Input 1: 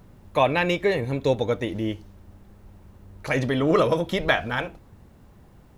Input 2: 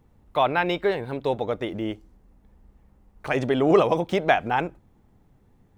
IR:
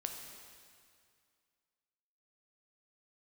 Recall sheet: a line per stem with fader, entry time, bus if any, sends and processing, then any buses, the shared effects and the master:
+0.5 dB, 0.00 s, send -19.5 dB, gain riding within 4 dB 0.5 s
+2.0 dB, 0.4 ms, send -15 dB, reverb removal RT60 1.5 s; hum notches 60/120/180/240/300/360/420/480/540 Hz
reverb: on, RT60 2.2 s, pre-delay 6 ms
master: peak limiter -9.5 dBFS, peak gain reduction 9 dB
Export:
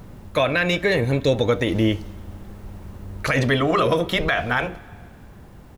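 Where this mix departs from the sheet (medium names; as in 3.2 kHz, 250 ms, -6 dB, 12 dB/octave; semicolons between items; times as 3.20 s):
stem 1 +0.5 dB -> +6.5 dB; stem 2: polarity flipped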